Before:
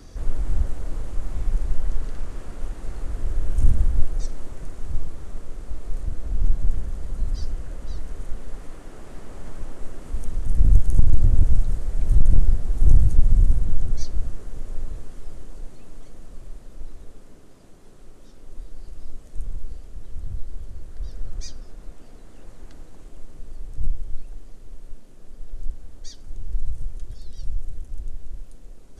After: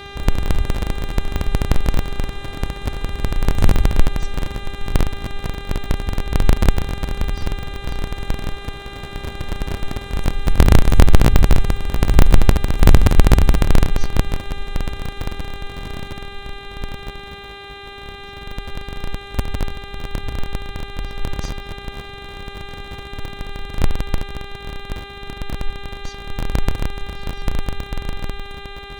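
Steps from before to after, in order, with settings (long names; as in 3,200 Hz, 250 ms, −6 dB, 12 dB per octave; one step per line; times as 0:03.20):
sub-harmonics by changed cycles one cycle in 3, inverted
hum with harmonics 400 Hz, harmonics 10, −38 dBFS −2 dB per octave
level +1.5 dB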